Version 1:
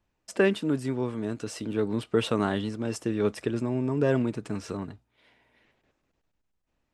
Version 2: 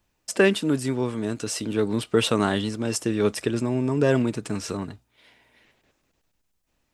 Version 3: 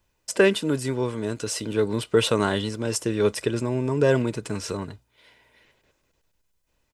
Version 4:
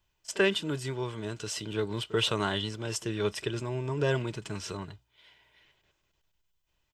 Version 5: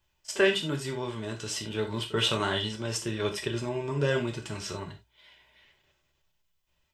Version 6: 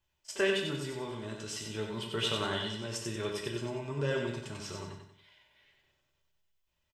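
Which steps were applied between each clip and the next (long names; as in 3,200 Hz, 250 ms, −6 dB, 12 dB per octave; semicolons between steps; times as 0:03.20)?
high-shelf EQ 3,500 Hz +9.5 dB; level +3.5 dB
comb filter 2 ms, depth 33%
thirty-one-band graphic EQ 250 Hz −11 dB, 500 Hz −9 dB, 3,150 Hz +7 dB, 10,000 Hz −11 dB; echo ahead of the sound 37 ms −19.5 dB; level −5 dB
reverb whose tail is shaped and stops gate 110 ms falling, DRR 1.5 dB
repeating echo 93 ms, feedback 41%, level −5 dB; level −6.5 dB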